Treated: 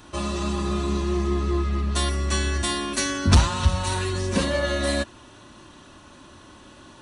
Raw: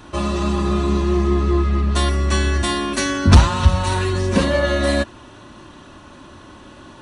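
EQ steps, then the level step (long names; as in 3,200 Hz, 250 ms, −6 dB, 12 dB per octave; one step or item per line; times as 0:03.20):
high-shelf EQ 3,800 Hz +8 dB
−6.5 dB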